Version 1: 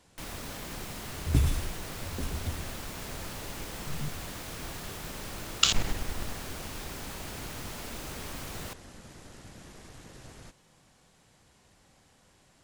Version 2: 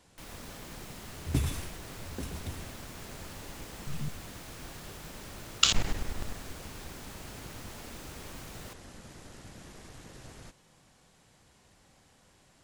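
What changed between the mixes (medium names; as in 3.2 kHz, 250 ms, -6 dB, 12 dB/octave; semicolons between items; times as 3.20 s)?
first sound -6.5 dB; second sound: add high-pass 130 Hz 6 dB/octave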